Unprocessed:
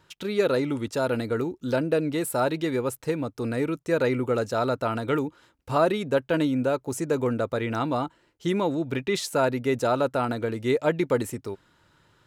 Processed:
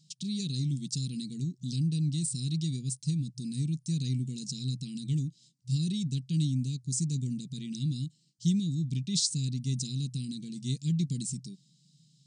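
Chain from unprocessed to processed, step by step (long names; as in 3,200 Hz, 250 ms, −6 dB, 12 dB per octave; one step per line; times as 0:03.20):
elliptic band-stop filter 170–4,600 Hz, stop band 60 dB
brick-wall band-pass 120–9,400 Hz
level +6.5 dB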